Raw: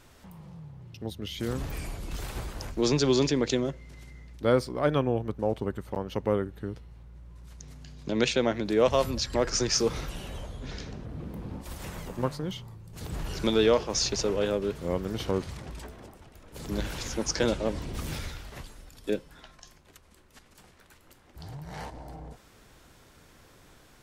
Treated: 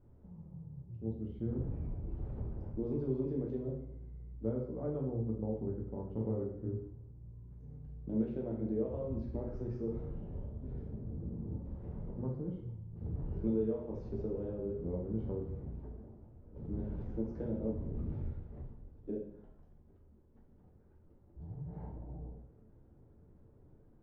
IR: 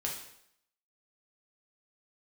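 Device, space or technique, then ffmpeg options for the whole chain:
television next door: -filter_complex "[0:a]acompressor=threshold=-26dB:ratio=5,lowpass=390[link_01];[1:a]atrim=start_sample=2205[link_02];[link_01][link_02]afir=irnorm=-1:irlink=0,asettb=1/sr,asplit=3[link_03][link_04][link_05];[link_03]atrim=end=6.144[link_06];[link_04]atrim=start=6.14:end=7.87,asetpts=PTS-STARTPTS,afade=type=in:duration=0.004:curve=qsin,afade=type=out:start_time=1.726:duration=0.004:curve=qsin,asplit=2[link_07][link_08];[link_08]adelay=27,volume=-3dB[link_09];[link_07][link_09]amix=inputs=2:normalize=0,atrim=end_sample=76293[link_10];[link_05]atrim=start=7.866[link_11];[link_06][link_10]acrossfade=duration=0.004:curve1=hsin:curve2=qsin[link_12];[link_12][link_11]acrossfade=duration=0.004:curve1=qsin:curve2=hsin,volume=-5dB"

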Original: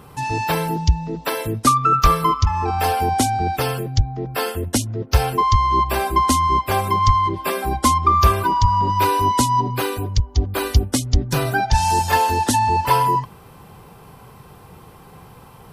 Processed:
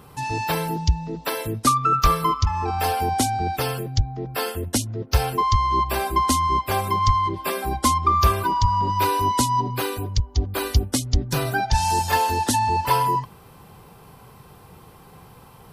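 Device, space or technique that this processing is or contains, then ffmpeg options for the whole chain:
presence and air boost: -af "equalizer=frequency=4300:width_type=o:width=0.77:gain=2,highshelf=frequency=9400:gain=3.5,volume=-3.5dB"

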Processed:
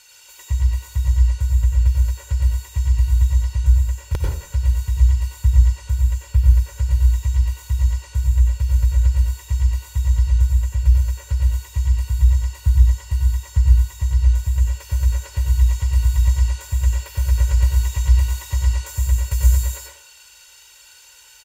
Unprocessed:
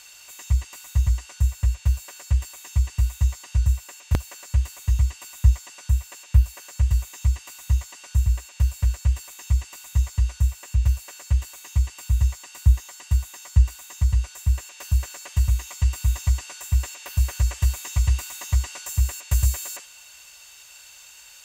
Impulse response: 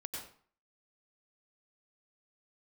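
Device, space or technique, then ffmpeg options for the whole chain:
microphone above a desk: -filter_complex "[0:a]aecho=1:1:2.1:0.72[link_01];[1:a]atrim=start_sample=2205[link_02];[link_01][link_02]afir=irnorm=-1:irlink=0"

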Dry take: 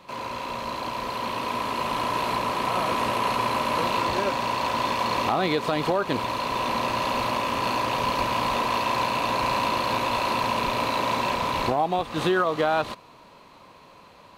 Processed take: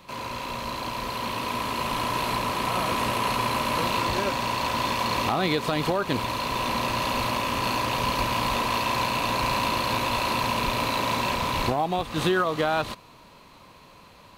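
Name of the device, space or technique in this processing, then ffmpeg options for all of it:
smiley-face EQ: -af "lowshelf=frequency=98:gain=6,equalizer=frequency=640:width_type=o:width=2.4:gain=-4,highshelf=frequency=9700:gain=6.5,volume=1.5dB"

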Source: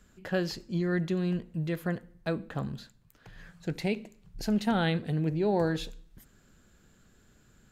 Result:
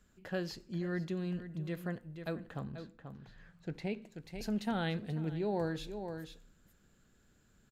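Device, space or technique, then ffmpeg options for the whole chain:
ducked delay: -filter_complex "[0:a]asplit=3[link_01][link_02][link_03];[link_02]adelay=486,volume=-7.5dB[link_04];[link_03]apad=whole_len=361469[link_05];[link_04][link_05]sidechaincompress=threshold=-37dB:ratio=8:attack=36:release=213[link_06];[link_01][link_06]amix=inputs=2:normalize=0,asettb=1/sr,asplit=3[link_07][link_08][link_09];[link_07]atrim=end=2.634[link_10];[link_08]atrim=start=2.63:end=4.02,asetpts=PTS-STARTPTS,afade=type=in:duration=0.004:curve=qsin,afade=type=out:start_time=1.386:duration=0.004:curve=qsin,aemphasis=mode=reproduction:type=50kf[link_11];[link_09]atrim=start=4.016[link_12];[link_10][link_11]acrossfade=duration=0.004:curve1=hsin:curve2=qsin[link_13];[link_13][link_12]acrossfade=duration=0.004:curve1=qsin:curve2=hsin,volume=-7.5dB"

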